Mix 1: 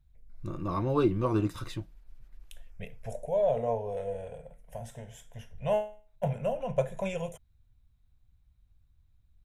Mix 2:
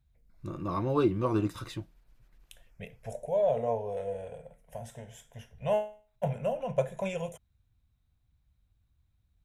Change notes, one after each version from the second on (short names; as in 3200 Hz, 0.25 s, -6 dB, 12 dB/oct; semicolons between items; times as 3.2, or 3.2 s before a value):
master: add HPF 83 Hz 6 dB/oct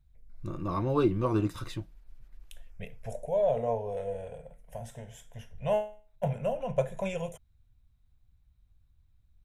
master: remove HPF 83 Hz 6 dB/oct